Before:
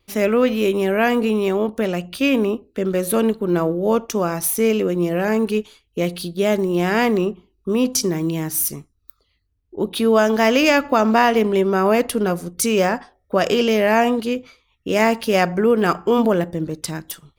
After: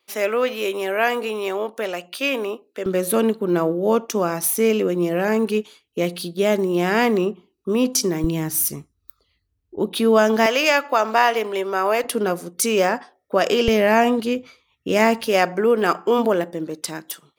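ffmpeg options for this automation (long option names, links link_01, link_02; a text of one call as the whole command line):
ffmpeg -i in.wav -af "asetnsamples=nb_out_samples=441:pad=0,asendcmd='2.86 highpass f 180;8.24 highpass f 50;9.79 highpass f 140;10.46 highpass f 540;12.04 highpass f 250;13.68 highpass f 89;15.27 highpass f 280',highpass=500" out.wav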